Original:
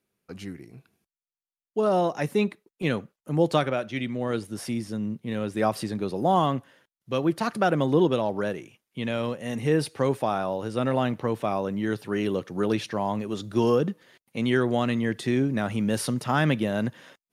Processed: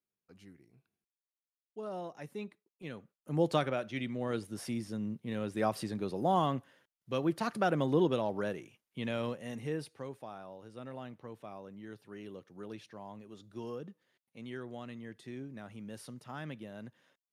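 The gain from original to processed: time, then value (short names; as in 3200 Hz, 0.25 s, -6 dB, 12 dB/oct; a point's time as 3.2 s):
2.95 s -18 dB
3.36 s -7 dB
9.29 s -7 dB
10.13 s -20 dB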